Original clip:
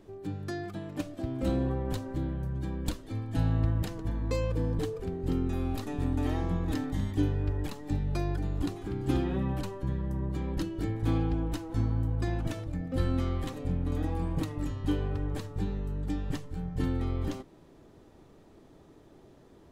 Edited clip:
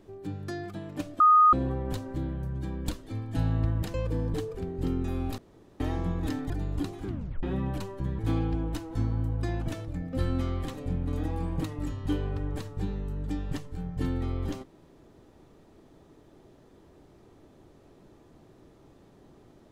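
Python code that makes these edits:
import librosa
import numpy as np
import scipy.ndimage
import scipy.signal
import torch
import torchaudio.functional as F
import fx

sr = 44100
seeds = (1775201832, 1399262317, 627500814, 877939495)

y = fx.edit(x, sr, fx.bleep(start_s=1.2, length_s=0.33, hz=1240.0, db=-14.5),
    fx.cut(start_s=3.94, length_s=0.45),
    fx.room_tone_fill(start_s=5.83, length_s=0.42),
    fx.cut(start_s=6.95, length_s=1.38),
    fx.tape_stop(start_s=8.9, length_s=0.36),
    fx.cut(start_s=10.02, length_s=0.96), tone=tone)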